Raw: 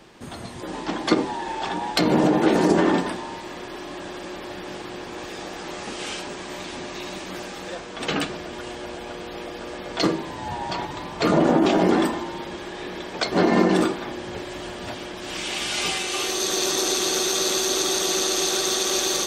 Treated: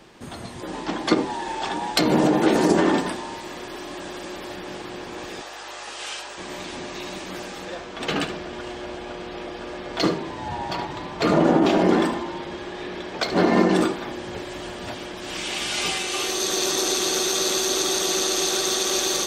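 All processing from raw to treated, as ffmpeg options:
-filter_complex "[0:a]asettb=1/sr,asplit=3[s0][s1][s2];[s0]atrim=end=1.304[s3];[s1]atrim=start=1.3:end=4.56,asetpts=PTS-STARTPTS,afade=t=in:d=0.004:c=qsin,afade=t=out:st=3.256:d=0.004:c=qsin,highshelf=f=5700:g=5.5,bandreject=f=60:t=h:w=6,bandreject=f=120:t=h:w=6,bandreject=f=180:t=h:w=6[s4];[s2]atrim=start=4.556[s5];[s3][s4]acrossfade=d=0.004:c1=hsin:c2=qsin[s6];[s6][s5]acrossfade=d=0.004:c1=qsin:c2=hsin,asettb=1/sr,asplit=3[s7][s8][s9];[s7]atrim=end=5.414[s10];[s8]atrim=start=5.41:end=6.38,asetpts=PTS-STARTPTS,afade=t=in:d=0.004:c=qsin,afade=t=out:st=0.966:d=0.004:c=qsin,highpass=670,bandreject=f=2200:w=17,aeval=exprs='val(0)+0.000891*(sin(2*PI*50*n/s)+sin(2*PI*2*50*n/s)/2+sin(2*PI*3*50*n/s)/3+sin(2*PI*4*50*n/s)/4+sin(2*PI*5*50*n/s)/5)':c=same[s11];[s9]atrim=start=6.376[s12];[s10][s11]acrossfade=d=0.004:c1=hsin:c2=qsin[s13];[s13][s12]acrossfade=d=0.004:c1=qsin:c2=hsin,asettb=1/sr,asplit=3[s14][s15][s16];[s14]atrim=end=7.654[s17];[s15]atrim=start=7.65:end=13.61,asetpts=PTS-STARTPTS,afade=t=in:d=0.004:c=qsin,afade=t=out:st=5.956:d=0.004:c=qsin,adynamicsmooth=sensitivity=6:basefreq=7100,aecho=1:1:72:0.282,atrim=end_sample=262836[s18];[s16]atrim=start=13.606[s19];[s17][s18]acrossfade=d=0.004:c1=hsin:c2=qsin[s20];[s20][s19]acrossfade=d=0.004:c1=qsin:c2=hsin"

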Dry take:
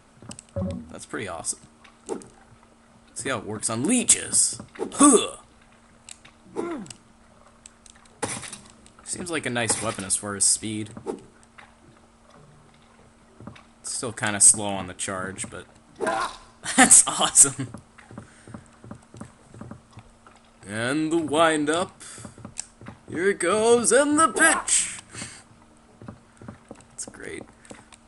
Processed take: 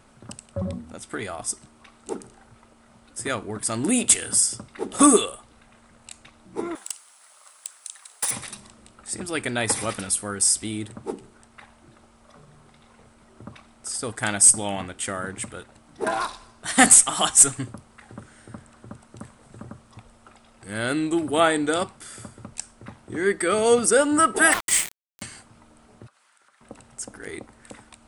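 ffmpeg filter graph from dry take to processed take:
-filter_complex "[0:a]asettb=1/sr,asplit=3[s0][s1][s2];[s0]atrim=end=6.754[s3];[s1]atrim=start=6.75:end=8.31,asetpts=PTS-STARTPTS,afade=t=in:d=0.004:c=qsin,afade=t=out:st=1.556:d=0.004:c=qsin,highpass=770,aemphasis=mode=production:type=riaa,asoftclip=type=hard:threshold=0.106[s4];[s2]atrim=start=8.306[s5];[s3][s4]acrossfade=d=0.004:c1=hsin:c2=qsin[s6];[s6][s5]acrossfade=d=0.004:c1=qsin:c2=hsin,asettb=1/sr,asplit=3[s7][s8][s9];[s7]atrim=end=24.524[s10];[s8]atrim=start=24.52:end=25.22,asetpts=PTS-STARTPTS,afade=t=in:d=0.004:c=qsin,afade=t=out:st=0.696:d=0.004:c=qsin,equalizer=f=2000:t=o:w=0.3:g=10.5,aeval=exprs='val(0)*gte(abs(val(0)),0.0708)':c=same[s11];[s9]atrim=start=25.216[s12];[s10][s11]acrossfade=d=0.004:c1=hsin:c2=qsin[s13];[s13][s12]acrossfade=d=0.004:c1=qsin:c2=hsin,asettb=1/sr,asplit=3[s14][s15][s16];[s14]atrim=end=26.074[s17];[s15]atrim=start=26.07:end=26.61,asetpts=PTS-STARTPTS,afade=t=in:d=0.004:c=qsin,afade=t=out:st=0.536:d=0.004:c=qsin,highpass=1300,acompressor=threshold=0.00141:ratio=3:attack=3.2:release=140:knee=1:detection=peak[s18];[s16]atrim=start=26.606[s19];[s17][s18]acrossfade=d=0.004:c1=hsin:c2=qsin[s20];[s20][s19]acrossfade=d=0.004:c1=qsin:c2=hsin"

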